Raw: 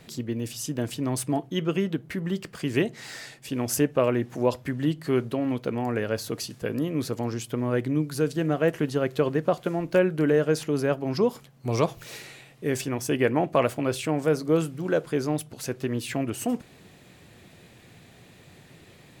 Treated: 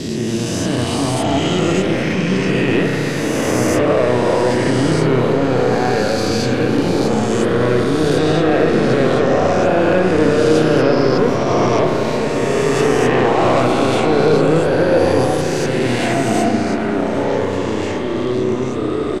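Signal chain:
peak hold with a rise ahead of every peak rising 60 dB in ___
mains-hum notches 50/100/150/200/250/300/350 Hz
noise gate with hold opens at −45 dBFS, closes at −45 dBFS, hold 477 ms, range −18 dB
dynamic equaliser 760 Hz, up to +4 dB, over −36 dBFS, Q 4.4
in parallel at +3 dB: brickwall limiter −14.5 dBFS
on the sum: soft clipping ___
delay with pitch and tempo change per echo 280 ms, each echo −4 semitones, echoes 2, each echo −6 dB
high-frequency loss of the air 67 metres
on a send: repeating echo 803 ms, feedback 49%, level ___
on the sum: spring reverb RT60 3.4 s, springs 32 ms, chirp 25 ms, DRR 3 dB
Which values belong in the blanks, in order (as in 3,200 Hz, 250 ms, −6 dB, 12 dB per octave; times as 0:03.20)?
2.47 s, −10 dBFS, −19 dB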